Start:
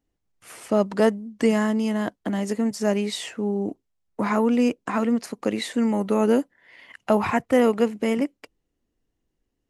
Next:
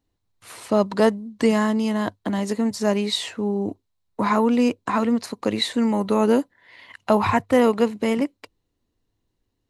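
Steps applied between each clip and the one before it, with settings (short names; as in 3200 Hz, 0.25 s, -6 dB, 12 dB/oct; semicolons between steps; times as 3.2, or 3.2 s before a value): thirty-one-band EQ 100 Hz +11 dB, 1000 Hz +6 dB, 4000 Hz +9 dB; gain +1 dB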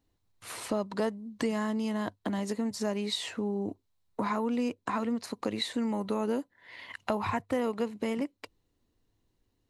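compressor 2.5:1, threshold -33 dBFS, peak gain reduction 13.5 dB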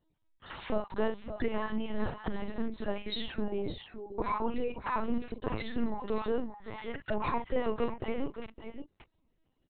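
random spectral dropouts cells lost 21%; on a send: tapped delay 47/570/592 ms -8/-10.5/-15.5 dB; on the sum: LPC vocoder at 8 kHz pitch kept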